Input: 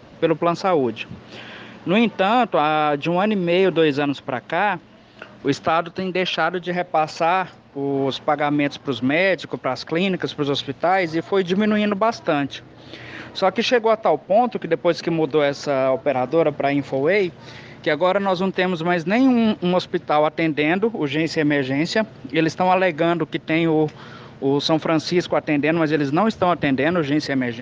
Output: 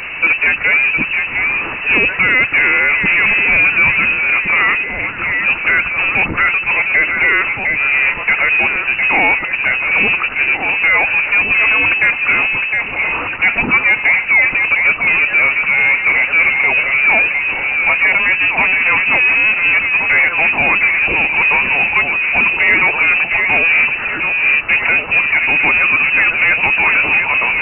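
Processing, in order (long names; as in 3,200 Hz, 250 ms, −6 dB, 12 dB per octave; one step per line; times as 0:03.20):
parametric band 250 Hz −5.5 dB 0.33 octaves
on a send: delay that swaps between a low-pass and a high-pass 708 ms, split 1,100 Hz, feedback 52%, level −7.5 dB
on the sum: power curve on the samples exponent 0.5
voice inversion scrambler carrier 2,800 Hz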